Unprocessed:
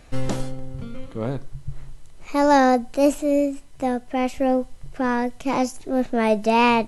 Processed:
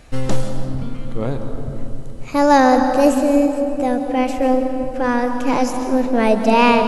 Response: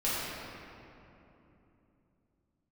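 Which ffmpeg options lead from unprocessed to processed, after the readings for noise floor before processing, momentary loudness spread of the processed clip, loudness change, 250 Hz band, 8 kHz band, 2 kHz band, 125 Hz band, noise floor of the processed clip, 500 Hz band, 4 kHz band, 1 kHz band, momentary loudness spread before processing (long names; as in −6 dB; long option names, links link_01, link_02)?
−44 dBFS, 16 LU, +4.5 dB, +5.0 dB, +4.0 dB, +4.0 dB, +6.0 dB, −28 dBFS, +5.0 dB, +4.0 dB, +4.5 dB, 18 LU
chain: -filter_complex "[0:a]asplit=2[link_01][link_02];[link_02]equalizer=frequency=2300:width_type=o:width=0.49:gain=-6.5[link_03];[1:a]atrim=start_sample=2205,adelay=134[link_04];[link_03][link_04]afir=irnorm=-1:irlink=0,volume=-14dB[link_05];[link_01][link_05]amix=inputs=2:normalize=0,volume=3.5dB"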